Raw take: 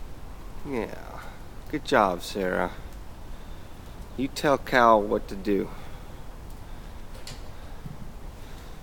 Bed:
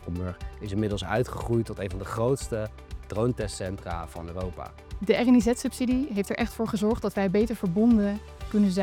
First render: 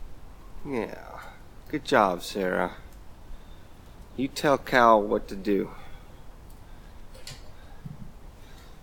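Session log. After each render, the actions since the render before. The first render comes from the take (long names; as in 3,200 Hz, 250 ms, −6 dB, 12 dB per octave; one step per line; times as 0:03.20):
noise reduction from a noise print 6 dB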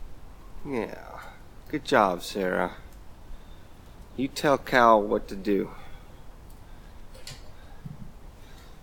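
no processing that can be heard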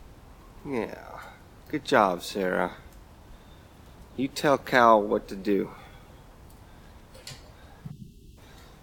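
0:07.91–0:08.38: gain on a spectral selection 420–2,600 Hz −29 dB
high-pass filter 46 Hz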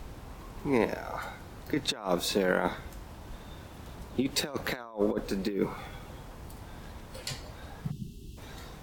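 compressor whose output falls as the input rises −28 dBFS, ratio −0.5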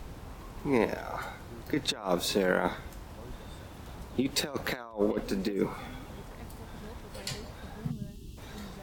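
mix in bed −24.5 dB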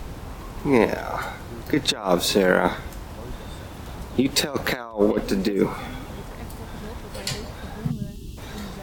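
level +8.5 dB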